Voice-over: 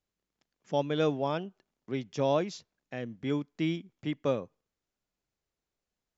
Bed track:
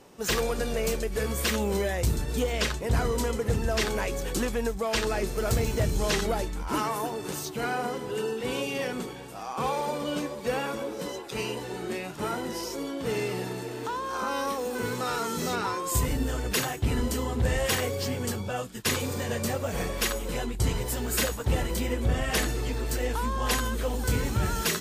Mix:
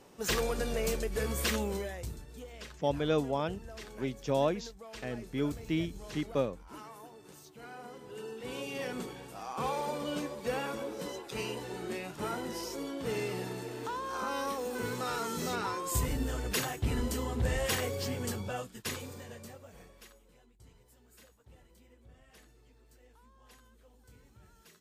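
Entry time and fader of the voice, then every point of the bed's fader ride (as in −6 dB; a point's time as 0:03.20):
2.10 s, −1.5 dB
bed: 0:01.55 −4 dB
0:02.30 −19.5 dB
0:07.55 −19.5 dB
0:08.99 −5 dB
0:18.51 −5 dB
0:20.39 −32.5 dB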